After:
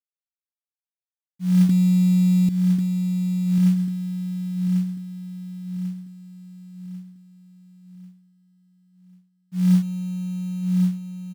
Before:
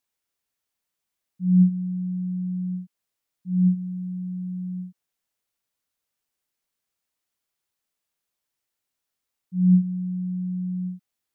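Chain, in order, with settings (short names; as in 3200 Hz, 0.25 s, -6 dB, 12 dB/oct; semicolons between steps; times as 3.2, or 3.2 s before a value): 1.69–2.49 small resonant body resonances 200/280 Hz, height 10 dB, ringing for 20 ms; companded quantiser 6-bit; on a send: feedback echo 1.093 s, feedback 42%, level -6 dB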